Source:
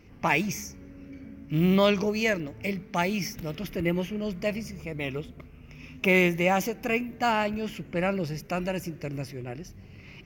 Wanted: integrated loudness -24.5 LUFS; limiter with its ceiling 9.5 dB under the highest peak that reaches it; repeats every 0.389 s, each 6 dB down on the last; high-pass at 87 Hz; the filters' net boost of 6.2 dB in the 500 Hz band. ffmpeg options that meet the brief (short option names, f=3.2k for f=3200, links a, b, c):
-af "highpass=87,equalizer=f=500:t=o:g=8,alimiter=limit=-15.5dB:level=0:latency=1,aecho=1:1:389|778|1167|1556|1945|2334:0.501|0.251|0.125|0.0626|0.0313|0.0157,volume=2.5dB"